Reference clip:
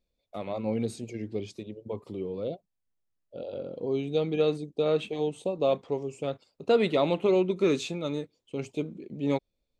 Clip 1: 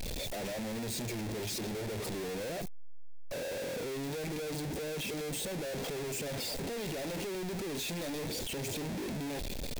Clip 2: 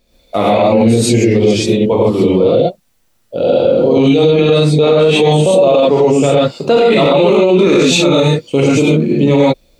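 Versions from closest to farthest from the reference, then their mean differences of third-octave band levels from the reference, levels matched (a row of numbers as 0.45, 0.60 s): 2, 1; 7.5, 17.5 dB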